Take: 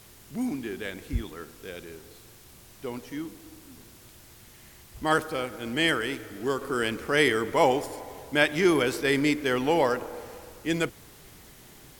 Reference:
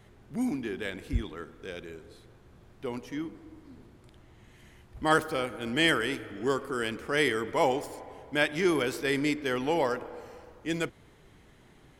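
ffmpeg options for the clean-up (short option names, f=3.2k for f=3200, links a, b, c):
-af "afwtdn=0.0022,asetnsamples=n=441:p=0,asendcmd='6.61 volume volume -4dB',volume=0dB"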